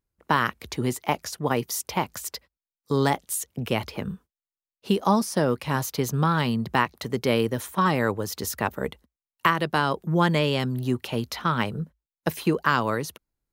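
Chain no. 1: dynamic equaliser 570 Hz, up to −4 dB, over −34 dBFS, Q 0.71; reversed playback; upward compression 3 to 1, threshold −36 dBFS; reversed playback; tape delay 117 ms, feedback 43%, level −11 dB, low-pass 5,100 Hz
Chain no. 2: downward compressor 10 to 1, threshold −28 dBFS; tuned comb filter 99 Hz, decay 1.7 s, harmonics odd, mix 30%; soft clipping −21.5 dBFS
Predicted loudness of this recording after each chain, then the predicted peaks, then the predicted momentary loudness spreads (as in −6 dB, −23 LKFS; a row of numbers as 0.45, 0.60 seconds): −27.0, −38.0 LKFS; −6.0, −21.5 dBFS; 10, 5 LU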